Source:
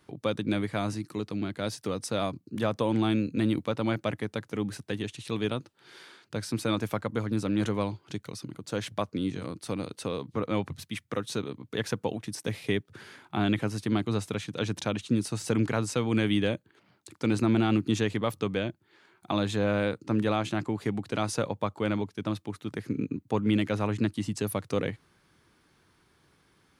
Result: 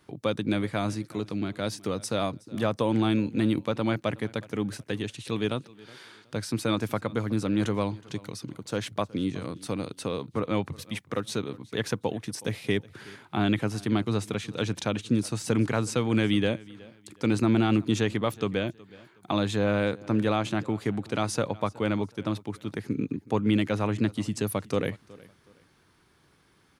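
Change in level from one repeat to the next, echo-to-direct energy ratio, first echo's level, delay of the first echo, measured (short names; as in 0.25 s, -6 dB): -11.0 dB, -21.5 dB, -22.0 dB, 0.369 s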